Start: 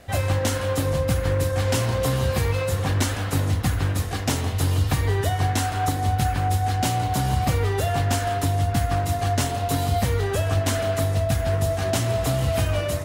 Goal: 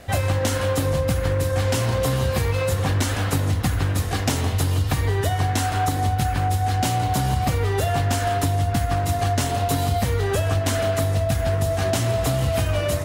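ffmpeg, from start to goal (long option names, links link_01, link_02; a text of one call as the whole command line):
ffmpeg -i in.wav -af "acompressor=threshold=-22dB:ratio=6,volume=4.5dB" out.wav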